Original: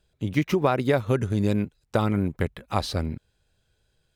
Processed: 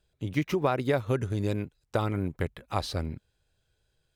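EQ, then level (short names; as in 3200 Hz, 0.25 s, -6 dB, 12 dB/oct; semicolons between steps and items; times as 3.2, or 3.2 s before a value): bell 210 Hz -7 dB 0.24 oct; -4.0 dB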